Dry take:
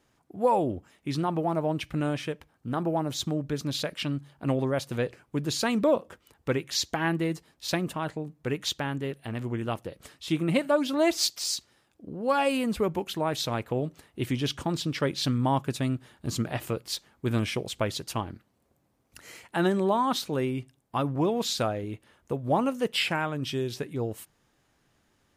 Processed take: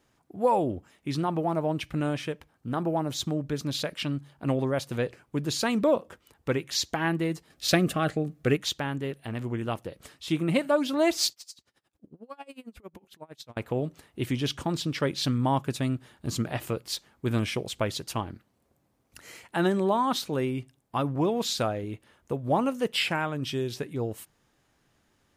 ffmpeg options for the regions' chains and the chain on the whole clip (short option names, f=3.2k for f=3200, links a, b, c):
-filter_complex "[0:a]asettb=1/sr,asplit=3[a][b][c];[a]atrim=end=7.504[d];[b]atrim=start=7.5:end=8.57,asetpts=PTS-STARTPTS,afade=t=in:d=0.004:c=qsin,afade=t=out:st=1.066:d=0.004:c=qsin,asuperstop=centerf=940:order=4:qfactor=3.8,acontrast=53[e];[c]atrim=start=8.566[f];[d][e]acrossfade=d=0.004:c1=hsin:c2=qsin[g];[g][f]acrossfade=d=0.004:c1=qsin:c2=hsin,asettb=1/sr,asplit=3[h][i][j];[h]atrim=end=11.324[k];[i]atrim=start=11.32:end=13.57,asetpts=PTS-STARTPTS,afade=t=in:d=0.004:c=qsin,afade=t=out:st=2.246:d=0.004:c=qsin,acompressor=threshold=-46dB:ratio=2:attack=3.2:release=140:knee=1:detection=peak,aeval=exprs='val(0)*pow(10,-27*(0.5-0.5*cos(2*PI*11*n/s))/20)':c=same[l];[j]atrim=start=13.566[m];[k][l]acrossfade=d=0.004:c1=hsin:c2=qsin[n];[n][m]acrossfade=d=0.004:c1=qsin:c2=hsin"